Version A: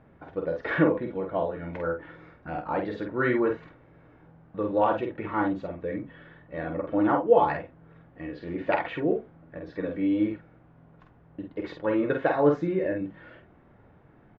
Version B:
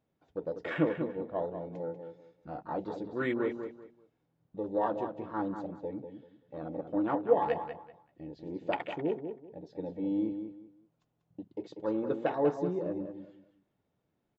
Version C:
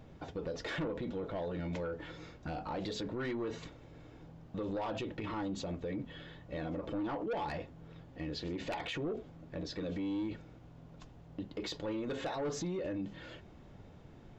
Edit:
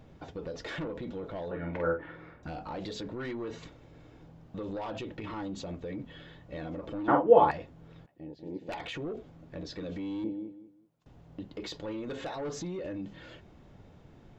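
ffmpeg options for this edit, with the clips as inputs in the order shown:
-filter_complex "[0:a]asplit=2[a][b];[1:a]asplit=2[c][d];[2:a]asplit=5[e][f][g][h][i];[e]atrim=end=1.512[j];[a]atrim=start=1.508:end=2.432[k];[f]atrim=start=2.428:end=7.082[l];[b]atrim=start=7.078:end=7.512[m];[g]atrim=start=7.508:end=8.062[n];[c]atrim=start=8.058:end=8.692[o];[h]atrim=start=8.688:end=10.242[p];[d]atrim=start=10.238:end=11.062[q];[i]atrim=start=11.058[r];[j][k]acrossfade=d=0.004:c1=hsin:c2=hsin[s];[s][l]acrossfade=d=0.004:c1=hsin:c2=hsin[t];[t][m]acrossfade=d=0.004:c1=hsin:c2=hsin[u];[u][n]acrossfade=d=0.004:c1=hsin:c2=hsin[v];[v][o]acrossfade=d=0.004:c1=hsin:c2=hsin[w];[w][p]acrossfade=d=0.004:c1=hsin:c2=hsin[x];[x][q]acrossfade=d=0.004:c1=hsin:c2=hsin[y];[y][r]acrossfade=d=0.004:c1=hsin:c2=hsin"

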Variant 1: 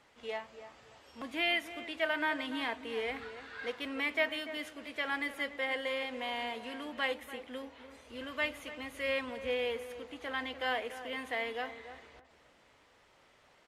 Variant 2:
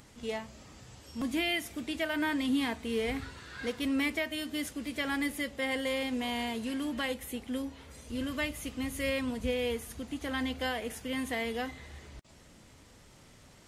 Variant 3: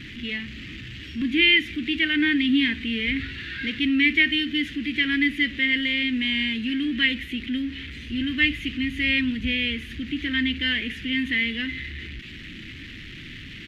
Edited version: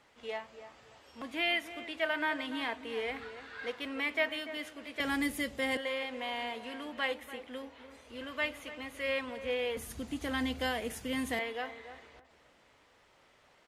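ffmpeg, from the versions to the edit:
-filter_complex "[1:a]asplit=2[a][b];[0:a]asplit=3[c][d][e];[c]atrim=end=5.002[f];[a]atrim=start=4.998:end=5.772[g];[d]atrim=start=5.768:end=9.772[h];[b]atrim=start=9.768:end=11.392[i];[e]atrim=start=11.388[j];[f][g]acrossfade=d=0.004:c1=hsin:c2=hsin[k];[k][h]acrossfade=d=0.004:c1=hsin:c2=hsin[l];[l][i]acrossfade=d=0.004:c1=hsin:c2=hsin[m];[m][j]acrossfade=d=0.004:c1=hsin:c2=hsin"

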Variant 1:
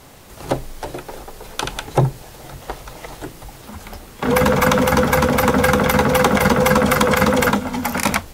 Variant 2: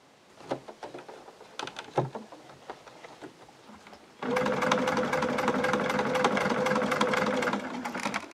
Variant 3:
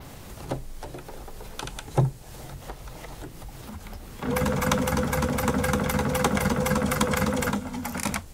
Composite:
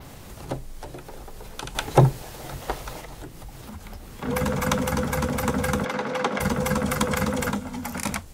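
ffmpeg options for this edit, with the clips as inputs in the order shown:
-filter_complex "[2:a]asplit=3[a][b][c];[a]atrim=end=1.752[d];[0:a]atrim=start=1.748:end=3.012[e];[b]atrim=start=3.008:end=5.852[f];[1:a]atrim=start=5.848:end=6.402[g];[c]atrim=start=6.398[h];[d][e]acrossfade=d=0.004:c1=hsin:c2=hsin[i];[i][f]acrossfade=d=0.004:c1=hsin:c2=hsin[j];[j][g]acrossfade=d=0.004:c1=hsin:c2=hsin[k];[k][h]acrossfade=d=0.004:c1=hsin:c2=hsin"

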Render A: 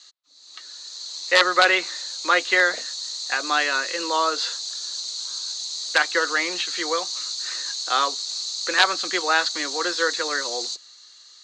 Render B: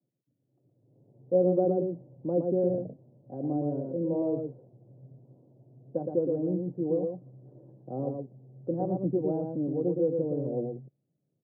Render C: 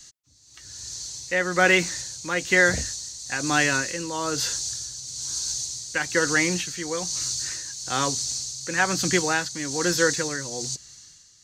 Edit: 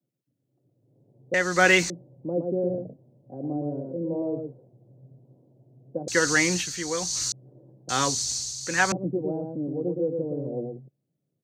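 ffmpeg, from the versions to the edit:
-filter_complex "[2:a]asplit=3[a][b][c];[1:a]asplit=4[d][e][f][g];[d]atrim=end=1.342[h];[a]atrim=start=1.338:end=1.902[i];[e]atrim=start=1.898:end=6.082[j];[b]atrim=start=6.078:end=7.322[k];[f]atrim=start=7.318:end=7.892[l];[c]atrim=start=7.888:end=8.922[m];[g]atrim=start=8.918[n];[h][i]acrossfade=d=0.004:c1=hsin:c2=hsin[o];[o][j]acrossfade=d=0.004:c1=hsin:c2=hsin[p];[p][k]acrossfade=d=0.004:c1=hsin:c2=hsin[q];[q][l]acrossfade=d=0.004:c1=hsin:c2=hsin[r];[r][m]acrossfade=d=0.004:c1=hsin:c2=hsin[s];[s][n]acrossfade=d=0.004:c1=hsin:c2=hsin"

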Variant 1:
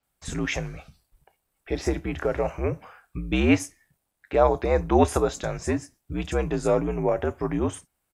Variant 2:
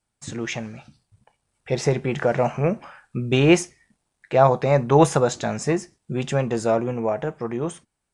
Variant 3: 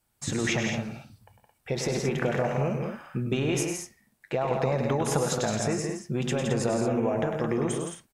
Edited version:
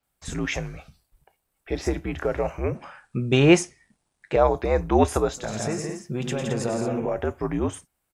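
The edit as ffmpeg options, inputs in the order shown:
-filter_complex "[0:a]asplit=3[a][b][c];[a]atrim=end=2.752[d];[1:a]atrim=start=2.748:end=4.362[e];[b]atrim=start=4.358:end=5.6[f];[2:a]atrim=start=5.36:end=7.2[g];[c]atrim=start=6.96[h];[d][e]acrossfade=d=0.004:c1=hsin:c2=hsin[i];[i][f]acrossfade=d=0.004:c1=hsin:c2=hsin[j];[j][g]acrossfade=d=0.24:c1=tri:c2=tri[k];[k][h]acrossfade=d=0.24:c1=tri:c2=tri"

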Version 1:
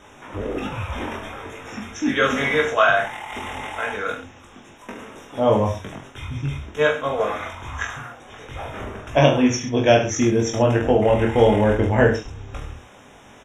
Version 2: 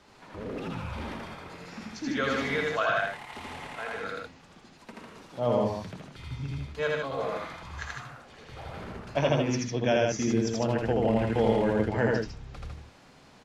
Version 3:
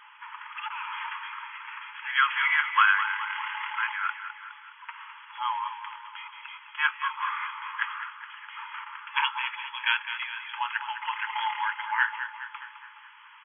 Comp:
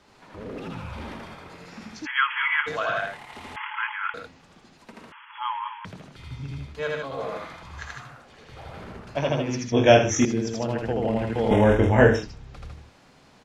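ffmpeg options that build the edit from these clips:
-filter_complex "[2:a]asplit=3[a][b][c];[0:a]asplit=2[d][e];[1:a]asplit=6[f][g][h][i][j][k];[f]atrim=end=2.07[l];[a]atrim=start=2.05:end=2.68[m];[g]atrim=start=2.66:end=3.562[n];[b]atrim=start=3.558:end=4.142[o];[h]atrim=start=4.138:end=5.122[p];[c]atrim=start=5.118:end=5.852[q];[i]atrim=start=5.848:end=9.722[r];[d]atrim=start=9.718:end=10.252[s];[j]atrim=start=10.248:end=11.512[t];[e]atrim=start=11.508:end=12.232[u];[k]atrim=start=12.228[v];[l][m]acrossfade=d=0.02:c1=tri:c2=tri[w];[w][n]acrossfade=d=0.02:c1=tri:c2=tri[x];[x][o]acrossfade=d=0.004:c1=hsin:c2=hsin[y];[y][p]acrossfade=d=0.004:c1=hsin:c2=hsin[z];[z][q]acrossfade=d=0.004:c1=hsin:c2=hsin[aa];[aa][r]acrossfade=d=0.004:c1=hsin:c2=hsin[ab];[ab][s]acrossfade=d=0.004:c1=hsin:c2=hsin[ac];[ac][t]acrossfade=d=0.004:c1=hsin:c2=hsin[ad];[ad][u]acrossfade=d=0.004:c1=hsin:c2=hsin[ae];[ae][v]acrossfade=d=0.004:c1=hsin:c2=hsin"

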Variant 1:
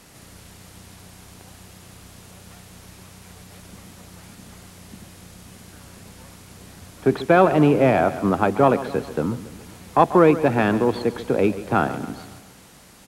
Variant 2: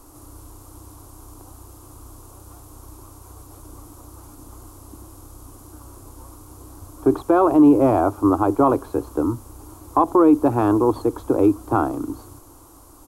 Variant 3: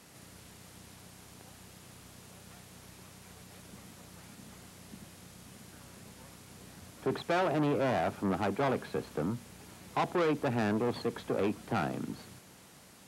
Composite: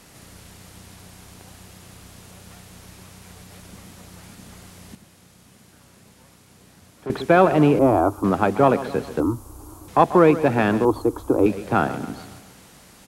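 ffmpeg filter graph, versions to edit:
-filter_complex "[1:a]asplit=3[a][b][c];[0:a]asplit=5[d][e][f][g][h];[d]atrim=end=4.952[i];[2:a]atrim=start=4.948:end=7.102[j];[e]atrim=start=7.098:end=7.792[k];[a]atrim=start=7.788:end=8.242[l];[f]atrim=start=8.238:end=9.202[m];[b]atrim=start=9.198:end=9.882[n];[g]atrim=start=9.878:end=10.852[o];[c]atrim=start=10.848:end=11.462[p];[h]atrim=start=11.458[q];[i][j]acrossfade=d=0.004:c1=hsin:c2=hsin[r];[r][k]acrossfade=d=0.004:c1=hsin:c2=hsin[s];[s][l]acrossfade=d=0.004:c1=hsin:c2=hsin[t];[t][m]acrossfade=d=0.004:c1=hsin:c2=hsin[u];[u][n]acrossfade=d=0.004:c1=hsin:c2=hsin[v];[v][o]acrossfade=d=0.004:c1=hsin:c2=hsin[w];[w][p]acrossfade=d=0.004:c1=hsin:c2=hsin[x];[x][q]acrossfade=d=0.004:c1=hsin:c2=hsin"

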